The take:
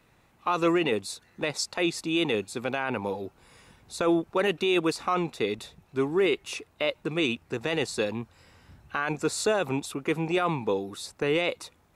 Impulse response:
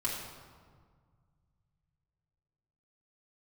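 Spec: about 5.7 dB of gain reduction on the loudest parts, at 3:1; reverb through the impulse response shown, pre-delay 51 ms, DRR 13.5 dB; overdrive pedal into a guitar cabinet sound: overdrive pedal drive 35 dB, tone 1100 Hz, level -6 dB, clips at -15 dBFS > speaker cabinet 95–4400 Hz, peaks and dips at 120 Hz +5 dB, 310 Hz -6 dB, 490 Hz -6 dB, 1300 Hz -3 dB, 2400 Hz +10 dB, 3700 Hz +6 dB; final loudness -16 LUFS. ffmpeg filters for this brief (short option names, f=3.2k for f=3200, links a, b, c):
-filter_complex "[0:a]acompressor=threshold=-27dB:ratio=3,asplit=2[a][b];[1:a]atrim=start_sample=2205,adelay=51[c];[b][c]afir=irnorm=-1:irlink=0,volume=-18dB[d];[a][d]amix=inputs=2:normalize=0,asplit=2[e][f];[f]highpass=f=720:p=1,volume=35dB,asoftclip=type=tanh:threshold=-15dB[g];[e][g]amix=inputs=2:normalize=0,lowpass=f=1.1k:p=1,volume=-6dB,highpass=95,equalizer=f=120:t=q:w=4:g=5,equalizer=f=310:t=q:w=4:g=-6,equalizer=f=490:t=q:w=4:g=-6,equalizer=f=1.3k:t=q:w=4:g=-3,equalizer=f=2.4k:t=q:w=4:g=10,equalizer=f=3.7k:t=q:w=4:g=6,lowpass=f=4.4k:w=0.5412,lowpass=f=4.4k:w=1.3066,volume=9.5dB"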